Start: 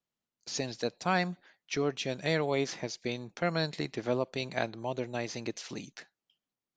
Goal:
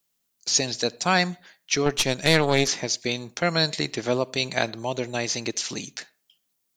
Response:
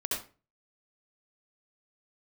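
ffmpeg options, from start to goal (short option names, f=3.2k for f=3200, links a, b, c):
-filter_complex "[0:a]crystalizer=i=3.5:c=0,asplit=2[a][b];[1:a]atrim=start_sample=2205,lowpass=2.9k[c];[b][c]afir=irnorm=-1:irlink=0,volume=-27.5dB[d];[a][d]amix=inputs=2:normalize=0,asettb=1/sr,asplit=3[e][f][g];[e]atrim=end=1.864[h];[f]atrim=start=1.86:end=2.68,asetpts=PTS-STARTPTS,afade=t=in:d=0.004:c=qsin,afade=t=out:st=0.816:d=0.004:c=qsin,aeval=exprs='0.237*(cos(1*acos(clip(val(0)/0.237,-1,1)))-cos(1*PI/2))+0.0531*(cos(4*acos(clip(val(0)/0.237,-1,1)))-cos(4*PI/2))':c=same[i];[g]atrim=start=2.676[j];[h][i]acrossfade=d=0.004:c1=hsin:c2=qsin[k];[k][j]acrossfade=d=0.004:c1=qsin:c2=hsin,volume=5.5dB"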